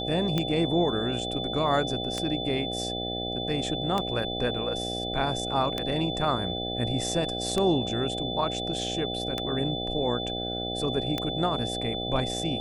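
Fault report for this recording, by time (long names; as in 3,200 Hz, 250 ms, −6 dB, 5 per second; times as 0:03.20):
mains buzz 60 Hz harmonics 13 −34 dBFS
scratch tick 33 1/3 rpm −13 dBFS
whistle 3,500 Hz −33 dBFS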